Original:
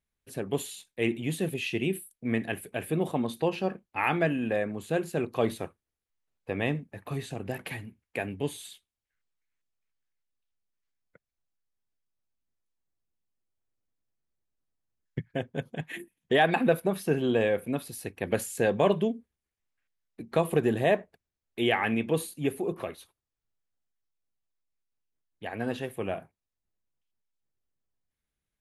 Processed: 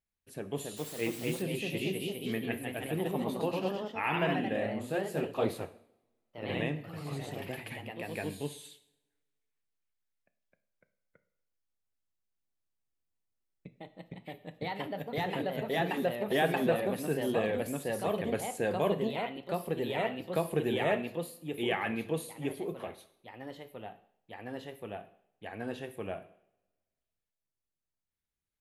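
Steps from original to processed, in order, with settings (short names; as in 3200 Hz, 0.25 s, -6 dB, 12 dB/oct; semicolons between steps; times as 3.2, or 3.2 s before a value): two-slope reverb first 0.63 s, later 1.7 s, from -23 dB, DRR 10.5 dB; echoes that change speed 0.298 s, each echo +1 st, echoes 3; 0.76–1.41 added noise white -42 dBFS; gain -6.5 dB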